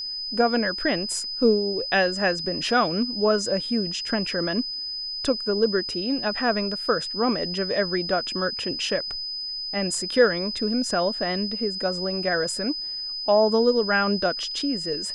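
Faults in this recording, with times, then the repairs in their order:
whine 5 kHz -29 dBFS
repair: band-stop 5 kHz, Q 30

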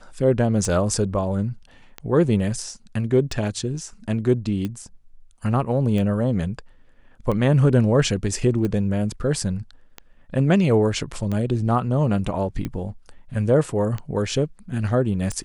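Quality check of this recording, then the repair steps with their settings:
tick 45 rpm -16 dBFS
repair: de-click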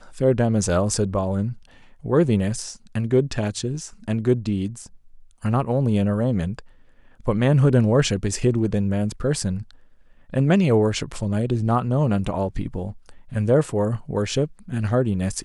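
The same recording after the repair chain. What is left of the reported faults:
nothing left

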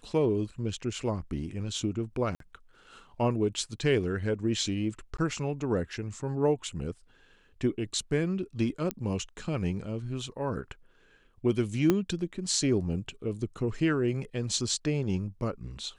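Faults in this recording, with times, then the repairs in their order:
2.35–2.40 s: dropout 53 ms
5.17–5.18 s: dropout 14 ms
8.91 s: pop -15 dBFS
11.90 s: pop -11 dBFS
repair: de-click; interpolate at 2.35 s, 53 ms; interpolate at 5.17 s, 14 ms

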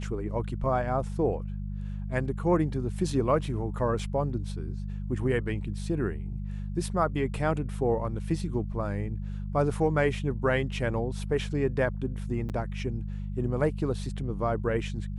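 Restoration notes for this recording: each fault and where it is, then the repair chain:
hum 50 Hz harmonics 4 -34 dBFS
3.99 s: dropout 3.2 ms
12.49–12.50 s: dropout 8.2 ms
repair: de-hum 50 Hz, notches 4; interpolate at 3.99 s, 3.2 ms; interpolate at 12.49 s, 8.2 ms

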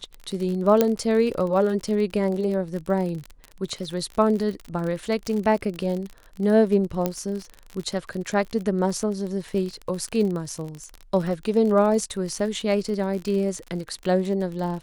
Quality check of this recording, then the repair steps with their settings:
crackle 42 per s -29 dBFS
0.81 s: pop -5 dBFS
5.27 s: pop
7.06 s: pop -10 dBFS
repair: de-click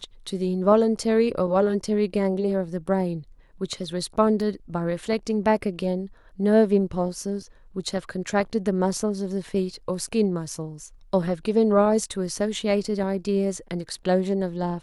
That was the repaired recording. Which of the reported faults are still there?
7.06 s: pop

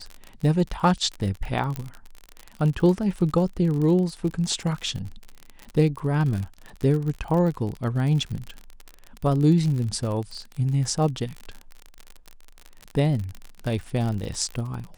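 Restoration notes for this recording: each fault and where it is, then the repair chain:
crackle 48 per s -29 dBFS
1.76 s: pop -15 dBFS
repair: de-click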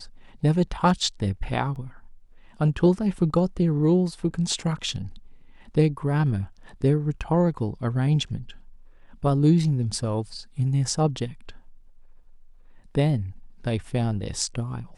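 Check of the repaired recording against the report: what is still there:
1.76 s: pop

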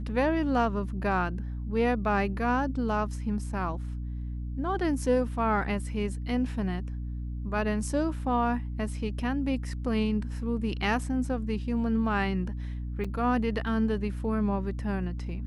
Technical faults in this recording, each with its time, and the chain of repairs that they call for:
hum 60 Hz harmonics 5 -34 dBFS
13.04–13.05 s: dropout 5.6 ms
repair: de-hum 60 Hz, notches 5; interpolate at 13.04 s, 5.6 ms

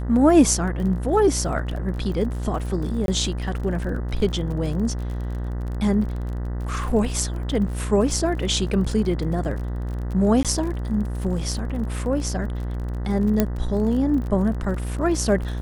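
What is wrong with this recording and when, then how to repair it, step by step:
buzz 60 Hz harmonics 33 -27 dBFS
crackle 39 per s -31 dBFS
3.06–3.08 s: dropout 22 ms
10.43–10.45 s: dropout 17 ms
13.40 s: pop -5 dBFS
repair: de-click; de-hum 60 Hz, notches 33; interpolate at 3.06 s, 22 ms; interpolate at 10.43 s, 17 ms

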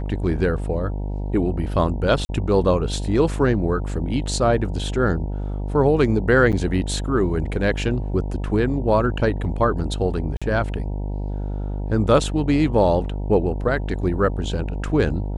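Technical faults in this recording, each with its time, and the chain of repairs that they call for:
buzz 50 Hz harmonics 19 -26 dBFS
2.25–2.29 s: dropout 40 ms
6.52–6.53 s: dropout 7.4 ms
10.37–10.42 s: dropout 46 ms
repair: de-hum 50 Hz, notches 19; interpolate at 2.25 s, 40 ms; interpolate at 6.52 s, 7.4 ms; interpolate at 10.37 s, 46 ms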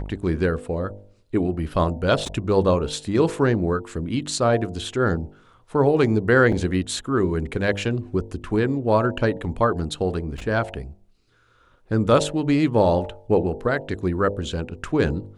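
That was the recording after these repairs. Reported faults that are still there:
nothing left

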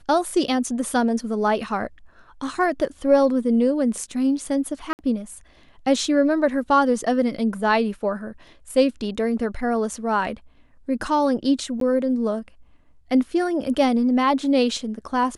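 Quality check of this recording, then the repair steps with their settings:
4.93–4.99 s: dropout 59 ms
11.80–11.81 s: dropout 13 ms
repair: interpolate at 4.93 s, 59 ms; interpolate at 11.80 s, 13 ms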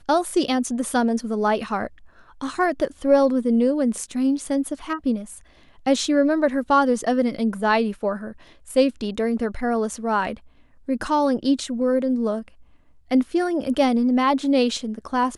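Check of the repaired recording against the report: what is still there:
nothing left

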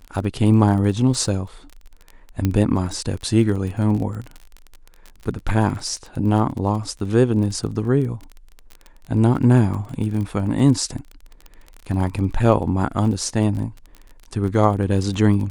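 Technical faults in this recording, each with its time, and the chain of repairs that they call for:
crackle 26 per s -28 dBFS
2.45 s: pop -8 dBFS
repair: de-click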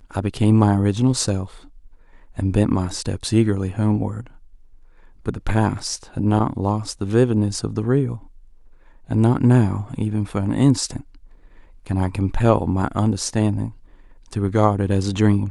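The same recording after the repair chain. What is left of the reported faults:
nothing left

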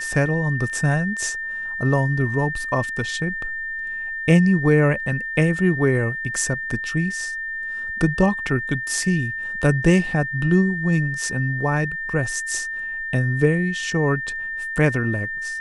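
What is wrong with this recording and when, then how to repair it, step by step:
whine 1.8 kHz -26 dBFS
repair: band-stop 1.8 kHz, Q 30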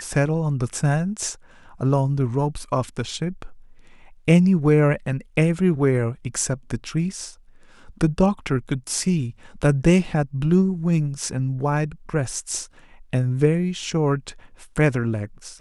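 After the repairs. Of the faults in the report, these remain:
nothing left

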